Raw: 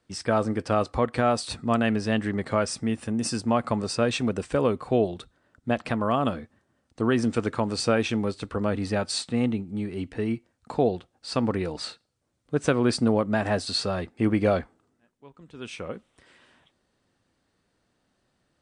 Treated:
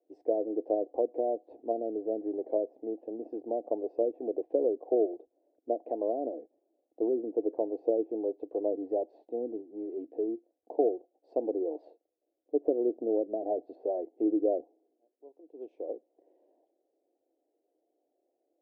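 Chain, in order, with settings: low-pass that closes with the level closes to 480 Hz, closed at -19.5 dBFS; elliptic band-pass 310–720 Hz, stop band 40 dB

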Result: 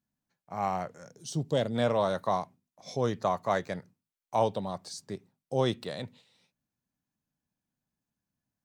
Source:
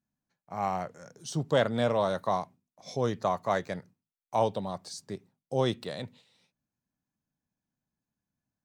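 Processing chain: 1.05–1.74 s: peaking EQ 1.3 kHz -4.5 dB -> -15 dB 1.5 oct

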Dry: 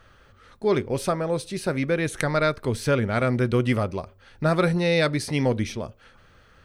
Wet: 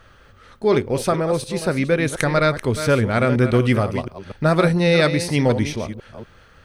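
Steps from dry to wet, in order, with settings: chunks repeated in reverse 240 ms, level -10 dB; trim +4.5 dB

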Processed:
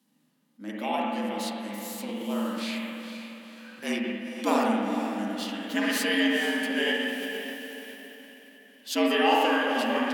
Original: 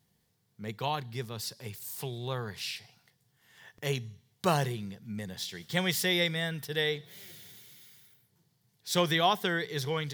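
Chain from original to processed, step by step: frequency shift +100 Hz; on a send: echo that smears into a reverb 479 ms, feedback 44%, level -9 dB; on the sum: spring tank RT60 1.8 s, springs 44/58 ms, chirp 65 ms, DRR -3 dB; formant shift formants -3 st

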